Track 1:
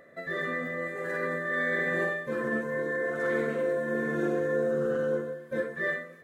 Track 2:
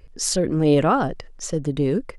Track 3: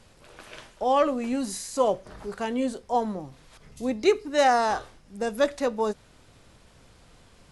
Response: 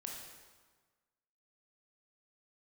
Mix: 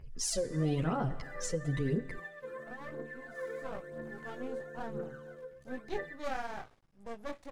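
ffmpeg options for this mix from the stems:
-filter_complex "[0:a]lowshelf=frequency=210:gain=-5.5,adelay=150,volume=-17dB[link_01];[1:a]asplit=2[link_02][link_03];[link_03]adelay=10.4,afreqshift=-3[link_04];[link_02][link_04]amix=inputs=2:normalize=1,volume=-7.5dB,asplit=2[link_05][link_06];[link_06]volume=-12dB[link_07];[2:a]highshelf=frequency=3300:gain=-8.5,flanger=delay=15.5:depth=7.3:speed=0.79,aeval=exprs='max(val(0),0)':channel_layout=same,adelay=1850,volume=-10dB,afade=type=in:start_time=3.5:duration=0.4:silence=0.375837[link_08];[link_01][link_05]amix=inputs=2:normalize=0,aphaser=in_gain=1:out_gain=1:delay=2.2:decay=0.71:speed=1:type=triangular,acompressor=threshold=-32dB:ratio=6,volume=0dB[link_09];[3:a]atrim=start_sample=2205[link_10];[link_07][link_10]afir=irnorm=-1:irlink=0[link_11];[link_08][link_09][link_11]amix=inputs=3:normalize=0,equalizer=frequency=140:width_type=o:width=0.54:gain=5.5"

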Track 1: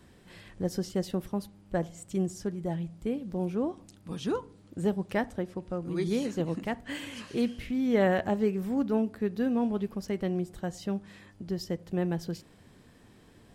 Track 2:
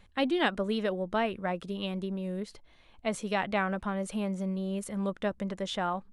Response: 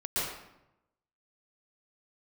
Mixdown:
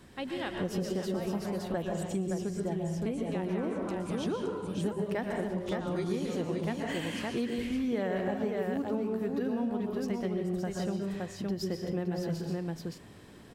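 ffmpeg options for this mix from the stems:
-filter_complex "[0:a]lowshelf=frequency=64:gain=-7,volume=1dB,asplit=3[link_01][link_02][link_03];[link_02]volume=-8.5dB[link_04];[link_03]volume=-3.5dB[link_05];[1:a]volume=-11dB,asplit=3[link_06][link_07][link_08];[link_07]volume=-8dB[link_09];[link_08]volume=-4dB[link_10];[2:a]atrim=start_sample=2205[link_11];[link_04][link_09]amix=inputs=2:normalize=0[link_12];[link_12][link_11]afir=irnorm=-1:irlink=0[link_13];[link_05][link_10]amix=inputs=2:normalize=0,aecho=0:1:568:1[link_14];[link_01][link_06][link_13][link_14]amix=inputs=4:normalize=0,acompressor=threshold=-30dB:ratio=4"

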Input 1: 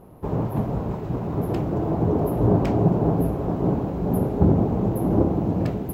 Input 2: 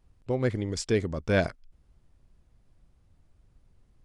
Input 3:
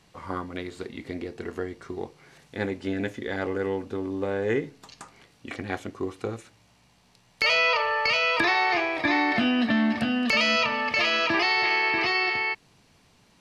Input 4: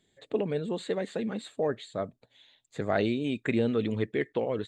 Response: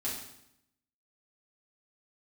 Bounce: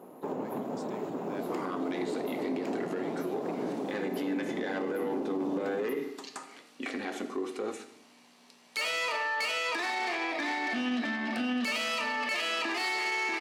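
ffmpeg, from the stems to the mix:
-filter_complex "[0:a]equalizer=frequency=7000:width=7.6:gain=10,acompressor=threshold=-27dB:ratio=5,asoftclip=type=tanh:threshold=-22.5dB,volume=-0.5dB,asplit=2[link_01][link_02];[link_02]volume=-14.5dB[link_03];[1:a]volume=-19dB[link_04];[2:a]asoftclip=type=tanh:threshold=-22.5dB,adelay=1350,volume=0.5dB,asplit=2[link_05][link_06];[link_06]volume=-8dB[link_07];[3:a]volume=-18.5dB[link_08];[4:a]atrim=start_sample=2205[link_09];[link_03][link_07]amix=inputs=2:normalize=0[link_10];[link_10][link_09]afir=irnorm=-1:irlink=0[link_11];[link_01][link_04][link_05][link_08][link_11]amix=inputs=5:normalize=0,highpass=frequency=230:width=0.5412,highpass=frequency=230:width=1.3066,alimiter=limit=-24dB:level=0:latency=1:release=73"

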